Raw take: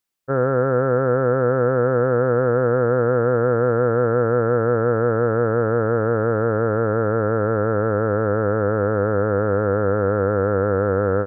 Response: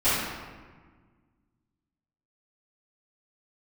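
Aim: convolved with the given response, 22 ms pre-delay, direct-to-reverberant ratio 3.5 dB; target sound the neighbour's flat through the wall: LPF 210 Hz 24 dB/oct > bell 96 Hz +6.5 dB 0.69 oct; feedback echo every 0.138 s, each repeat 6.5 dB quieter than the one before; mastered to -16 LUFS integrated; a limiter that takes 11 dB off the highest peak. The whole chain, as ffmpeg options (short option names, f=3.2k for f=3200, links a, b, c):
-filter_complex "[0:a]alimiter=limit=-19.5dB:level=0:latency=1,aecho=1:1:138|276|414|552|690|828:0.473|0.222|0.105|0.0491|0.0231|0.0109,asplit=2[a][b];[1:a]atrim=start_sample=2205,adelay=22[c];[b][c]afir=irnorm=-1:irlink=0,volume=-19.5dB[d];[a][d]amix=inputs=2:normalize=0,lowpass=f=210:w=0.5412,lowpass=f=210:w=1.3066,equalizer=f=96:t=o:w=0.69:g=6.5,volume=14dB"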